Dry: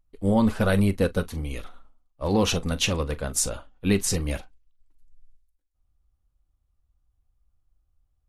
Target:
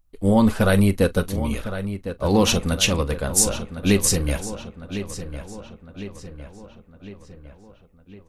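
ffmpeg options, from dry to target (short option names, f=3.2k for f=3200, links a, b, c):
-filter_complex "[0:a]highshelf=f=8.1k:g=6,asplit=2[a][b];[b]adelay=1056,lowpass=f=3.8k:p=1,volume=-11dB,asplit=2[c][d];[d]adelay=1056,lowpass=f=3.8k:p=1,volume=0.55,asplit=2[e][f];[f]adelay=1056,lowpass=f=3.8k:p=1,volume=0.55,asplit=2[g][h];[h]adelay=1056,lowpass=f=3.8k:p=1,volume=0.55,asplit=2[i][j];[j]adelay=1056,lowpass=f=3.8k:p=1,volume=0.55,asplit=2[k][l];[l]adelay=1056,lowpass=f=3.8k:p=1,volume=0.55[m];[c][e][g][i][k][m]amix=inputs=6:normalize=0[n];[a][n]amix=inputs=2:normalize=0,volume=4dB"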